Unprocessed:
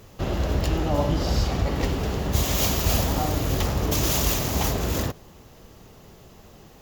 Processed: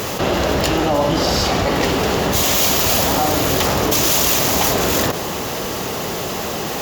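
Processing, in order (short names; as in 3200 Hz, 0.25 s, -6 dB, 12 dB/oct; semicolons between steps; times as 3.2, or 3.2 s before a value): HPF 390 Hz 6 dB/oct; fast leveller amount 70%; gain +7.5 dB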